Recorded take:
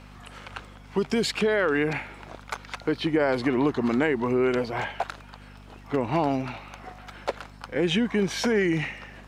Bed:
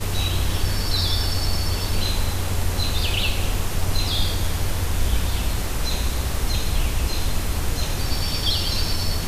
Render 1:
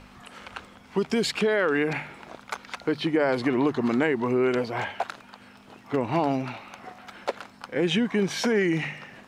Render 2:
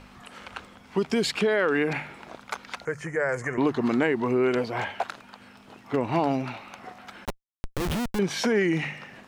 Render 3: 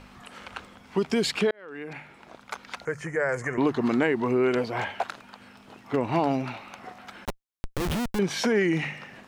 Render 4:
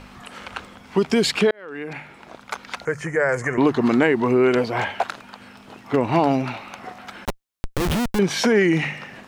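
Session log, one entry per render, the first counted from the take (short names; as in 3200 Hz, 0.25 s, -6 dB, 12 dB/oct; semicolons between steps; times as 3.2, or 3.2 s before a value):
de-hum 50 Hz, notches 3
2.85–3.58 EQ curve 140 Hz 0 dB, 200 Hz -8 dB, 290 Hz -17 dB, 490 Hz -1 dB, 800 Hz -8 dB, 1200 Hz -3 dB, 1800 Hz +5 dB, 3900 Hz -28 dB, 6700 Hz +12 dB, 13000 Hz -5 dB; 7.25–8.19 Schmitt trigger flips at -22.5 dBFS
1.51–2.92 fade in
gain +6 dB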